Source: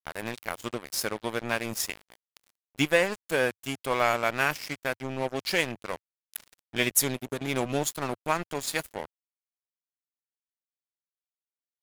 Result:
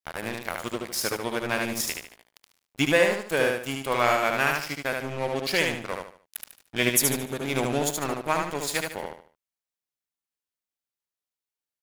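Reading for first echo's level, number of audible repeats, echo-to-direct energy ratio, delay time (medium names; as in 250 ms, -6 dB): -3.5 dB, 4, -3.0 dB, 74 ms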